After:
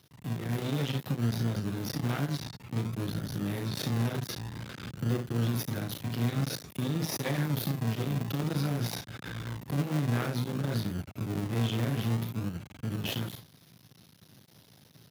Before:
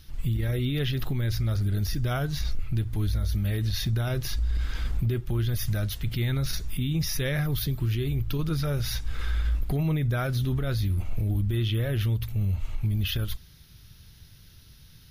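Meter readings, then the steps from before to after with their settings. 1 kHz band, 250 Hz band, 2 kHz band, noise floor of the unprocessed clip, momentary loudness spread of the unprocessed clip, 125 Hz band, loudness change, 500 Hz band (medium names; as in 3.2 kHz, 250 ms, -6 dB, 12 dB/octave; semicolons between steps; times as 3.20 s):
+1.0 dB, 0.0 dB, -3.5 dB, -52 dBFS, 4 LU, -5.5 dB, -4.5 dB, -2.0 dB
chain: early reflections 35 ms -6.5 dB, 59 ms -9.5 dB, 78 ms -17 dB; in parallel at -3 dB: decimation with a swept rate 40×, swing 60% 0.53 Hz; on the sum: level rider gain up to 4 dB; half-wave rectifier; high-pass 120 Hz 24 dB/octave; trim -6.5 dB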